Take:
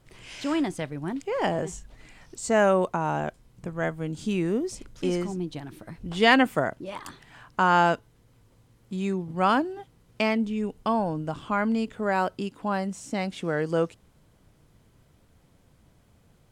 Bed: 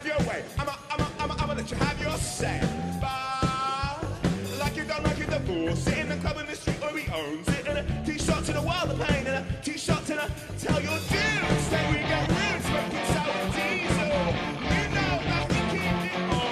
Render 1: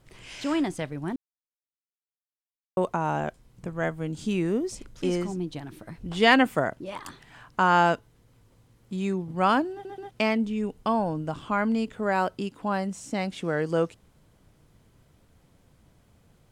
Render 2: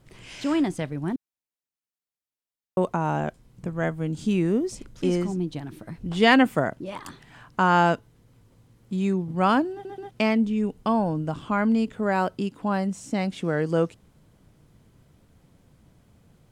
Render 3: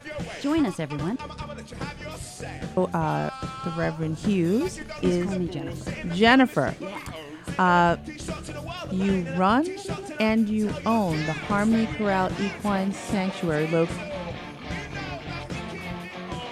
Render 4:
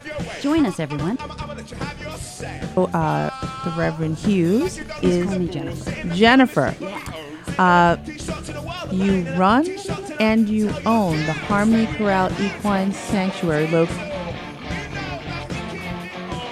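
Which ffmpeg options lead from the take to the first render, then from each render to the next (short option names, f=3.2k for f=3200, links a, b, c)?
-filter_complex "[0:a]asplit=6[a][b][c][d][e][f];[a]atrim=end=1.16,asetpts=PTS-STARTPTS,afade=t=out:st=1.156:d=0.004:c=hsin[g];[b]atrim=start=1.16:end=2.77,asetpts=PTS-STARTPTS,volume=0[h];[c]atrim=start=2.77:end=9.852,asetpts=PTS-STARTPTS,afade=t=in:d=0.004:c=hsin[i];[d]atrim=start=9.718:end=9.852[j];[e]atrim=start=9.718:end=9.852[k];[f]atrim=start=10.108[l];[g][h][i]concat=n=3:v=0:a=1[m];[m][j]acrossfade=d=0.004:c1=hsin:c2=hsin[n];[n][k]acrossfade=d=0.004:c1=hsin:c2=hsin[o];[o][l]acrossfade=d=0.004:c1=hsin:c2=hsin"
-af "equalizer=f=180:w=0.63:g=4.5"
-filter_complex "[1:a]volume=-7.5dB[a];[0:a][a]amix=inputs=2:normalize=0"
-af "volume=5dB,alimiter=limit=-1dB:level=0:latency=1"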